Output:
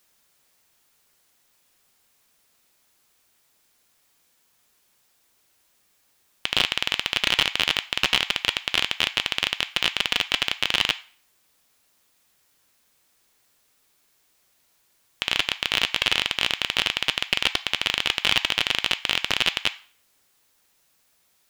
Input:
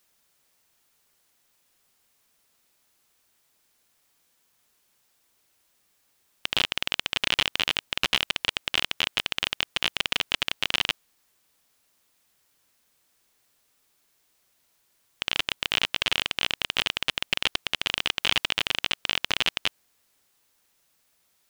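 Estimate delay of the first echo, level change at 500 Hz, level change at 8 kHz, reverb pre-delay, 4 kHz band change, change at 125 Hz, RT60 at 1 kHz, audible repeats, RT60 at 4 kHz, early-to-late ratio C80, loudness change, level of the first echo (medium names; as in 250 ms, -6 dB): no echo, +3.0 dB, +3.0 dB, 3 ms, +3.5 dB, +3.0 dB, 0.45 s, no echo, 0.45 s, 21.5 dB, +3.5 dB, no echo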